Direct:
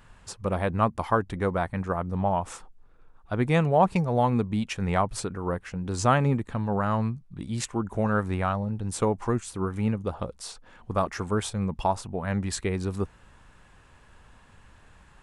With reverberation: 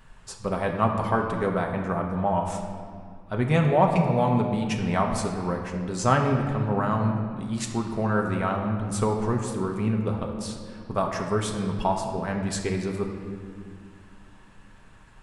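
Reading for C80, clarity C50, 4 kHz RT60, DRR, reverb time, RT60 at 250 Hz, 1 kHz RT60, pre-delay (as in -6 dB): 6.0 dB, 5.0 dB, 1.4 s, 1.0 dB, 2.0 s, 3.6 s, 1.8 s, 5 ms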